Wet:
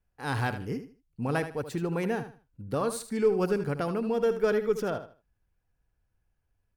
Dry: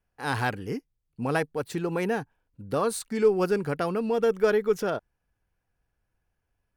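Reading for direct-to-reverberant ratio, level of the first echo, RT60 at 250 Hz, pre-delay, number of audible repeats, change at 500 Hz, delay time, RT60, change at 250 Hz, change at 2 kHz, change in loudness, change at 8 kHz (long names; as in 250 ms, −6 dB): no reverb audible, −11.0 dB, no reverb audible, no reverb audible, 2, −2.5 dB, 77 ms, no reverb audible, −1.0 dB, −3.5 dB, −2.5 dB, −3.5 dB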